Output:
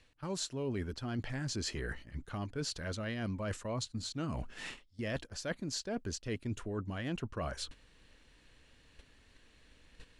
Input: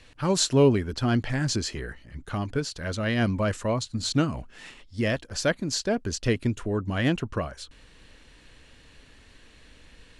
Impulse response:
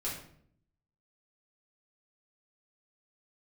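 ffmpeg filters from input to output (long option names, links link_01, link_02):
-af "areverse,acompressor=threshold=-36dB:ratio=8,areverse,agate=range=-11dB:threshold=-47dB:ratio=16:detection=peak,volume=1dB"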